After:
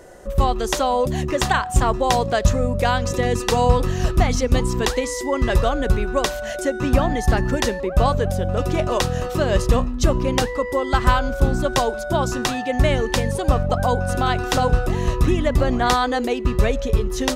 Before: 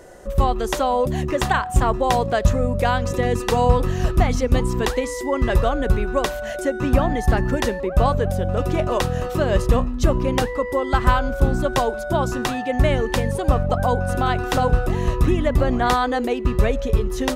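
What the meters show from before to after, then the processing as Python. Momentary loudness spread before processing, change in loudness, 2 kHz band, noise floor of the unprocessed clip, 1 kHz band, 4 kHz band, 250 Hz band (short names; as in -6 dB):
4 LU, +0.5 dB, +1.0 dB, -29 dBFS, +0.5 dB, +4.0 dB, 0.0 dB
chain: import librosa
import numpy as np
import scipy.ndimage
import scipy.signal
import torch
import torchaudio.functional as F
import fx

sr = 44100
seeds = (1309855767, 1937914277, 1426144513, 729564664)

y = fx.dynamic_eq(x, sr, hz=5600.0, q=0.73, threshold_db=-43.0, ratio=4.0, max_db=6)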